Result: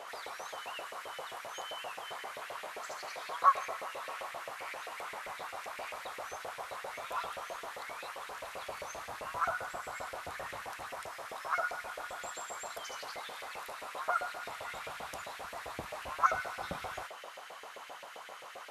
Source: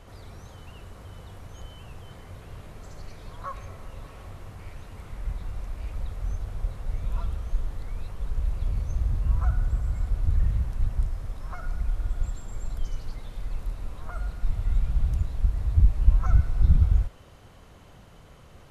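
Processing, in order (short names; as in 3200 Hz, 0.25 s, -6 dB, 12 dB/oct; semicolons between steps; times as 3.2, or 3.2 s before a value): LFO high-pass saw up 7.6 Hz 520–2300 Hz; gain +6.5 dB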